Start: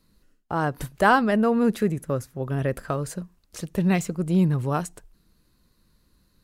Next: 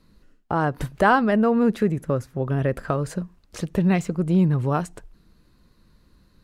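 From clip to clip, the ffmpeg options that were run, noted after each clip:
-filter_complex "[0:a]lowpass=f=3.1k:p=1,asplit=2[a][b];[b]acompressor=threshold=-30dB:ratio=6,volume=3dB[c];[a][c]amix=inputs=2:normalize=0,volume=-1dB"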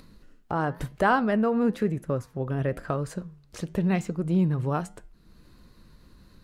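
-af "flanger=delay=7.2:depth=3.4:regen=-88:speed=1:shape=sinusoidal,acompressor=mode=upward:threshold=-42dB:ratio=2.5"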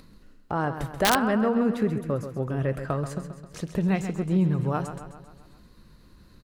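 -filter_complex "[0:a]asplit=2[a][b];[b]aecho=0:1:133|266|399|532|665|798:0.316|0.174|0.0957|0.0526|0.0289|0.0159[c];[a][c]amix=inputs=2:normalize=0,aeval=exprs='(mod(3.98*val(0)+1,2)-1)/3.98':c=same"

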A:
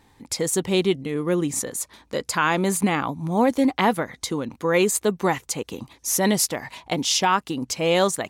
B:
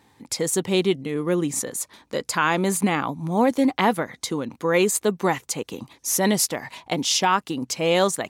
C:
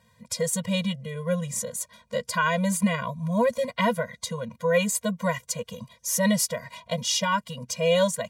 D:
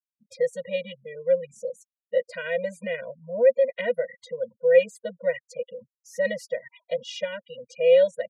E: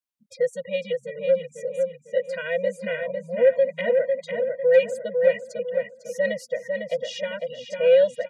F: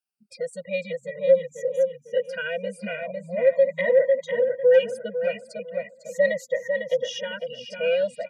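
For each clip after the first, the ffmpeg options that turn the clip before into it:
-af "highpass=100"
-af "afftfilt=real='re*eq(mod(floor(b*sr/1024/230),2),0)':imag='im*eq(mod(floor(b*sr/1024/230),2),0)':win_size=1024:overlap=0.75"
-filter_complex "[0:a]afftfilt=real='re*gte(hypot(re,im),0.0224)':imag='im*gte(hypot(re,im),0.0224)':win_size=1024:overlap=0.75,asplit=3[a][b][c];[a]bandpass=f=530:t=q:w=8,volume=0dB[d];[b]bandpass=f=1.84k:t=q:w=8,volume=-6dB[e];[c]bandpass=f=2.48k:t=q:w=8,volume=-9dB[f];[d][e][f]amix=inputs=3:normalize=0,volume=7.5dB"
-filter_complex "[0:a]acontrast=46,asplit=2[a][b];[b]adelay=501,lowpass=f=2.8k:p=1,volume=-4dB,asplit=2[c][d];[d]adelay=501,lowpass=f=2.8k:p=1,volume=0.39,asplit=2[e][f];[f]adelay=501,lowpass=f=2.8k:p=1,volume=0.39,asplit=2[g][h];[h]adelay=501,lowpass=f=2.8k:p=1,volume=0.39,asplit=2[i][j];[j]adelay=501,lowpass=f=2.8k:p=1,volume=0.39[k];[c][e][g][i][k]amix=inputs=5:normalize=0[l];[a][l]amix=inputs=2:normalize=0,volume=-4.5dB"
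-af "afftfilt=real='re*pow(10,13/40*sin(2*PI*(1.1*log(max(b,1)*sr/1024/100)/log(2)-(-0.39)*(pts-256)/sr)))':imag='im*pow(10,13/40*sin(2*PI*(1.1*log(max(b,1)*sr/1024/100)/log(2)-(-0.39)*(pts-256)/sr)))':win_size=1024:overlap=0.75,volume=-2dB"

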